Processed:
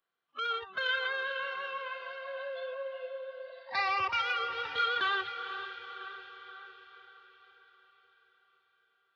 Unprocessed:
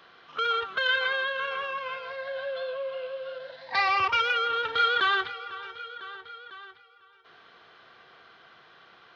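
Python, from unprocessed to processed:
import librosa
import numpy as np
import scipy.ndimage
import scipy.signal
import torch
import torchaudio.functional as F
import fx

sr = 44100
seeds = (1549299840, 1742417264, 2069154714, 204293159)

y = fx.noise_reduce_blind(x, sr, reduce_db=27)
y = fx.echo_diffused(y, sr, ms=468, feedback_pct=55, wet_db=-10.5)
y = F.gain(torch.from_numpy(y), -6.0).numpy()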